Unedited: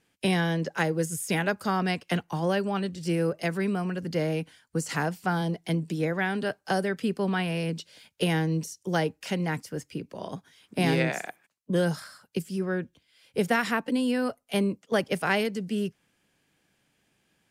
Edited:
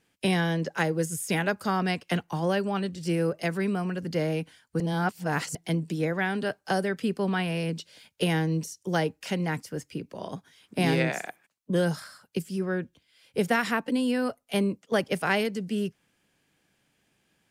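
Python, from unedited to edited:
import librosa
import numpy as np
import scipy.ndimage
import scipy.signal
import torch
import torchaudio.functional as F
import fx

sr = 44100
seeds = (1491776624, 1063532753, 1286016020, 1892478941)

y = fx.edit(x, sr, fx.reverse_span(start_s=4.8, length_s=0.75), tone=tone)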